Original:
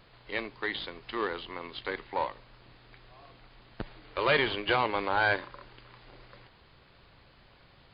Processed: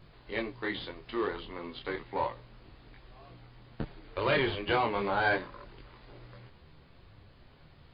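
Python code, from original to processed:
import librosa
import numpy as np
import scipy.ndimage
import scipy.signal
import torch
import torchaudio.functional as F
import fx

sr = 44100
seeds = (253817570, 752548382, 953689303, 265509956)

y = fx.low_shelf(x, sr, hz=470.0, db=9.0)
y = fx.detune_double(y, sr, cents=12)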